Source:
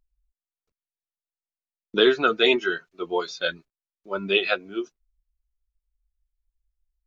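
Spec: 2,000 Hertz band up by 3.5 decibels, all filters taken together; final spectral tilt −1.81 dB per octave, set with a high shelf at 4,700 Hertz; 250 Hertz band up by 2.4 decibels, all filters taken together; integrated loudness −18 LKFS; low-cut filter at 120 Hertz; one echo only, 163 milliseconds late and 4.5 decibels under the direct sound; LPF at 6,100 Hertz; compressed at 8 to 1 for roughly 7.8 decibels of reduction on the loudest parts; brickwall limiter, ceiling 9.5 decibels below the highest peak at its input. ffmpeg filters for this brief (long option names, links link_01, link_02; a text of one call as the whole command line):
ffmpeg -i in.wav -af "highpass=120,lowpass=6100,equalizer=frequency=250:width_type=o:gain=4,equalizer=frequency=2000:width_type=o:gain=4.5,highshelf=frequency=4700:gain=3,acompressor=threshold=-19dB:ratio=8,alimiter=limit=-18dB:level=0:latency=1,aecho=1:1:163:0.596,volume=11.5dB" out.wav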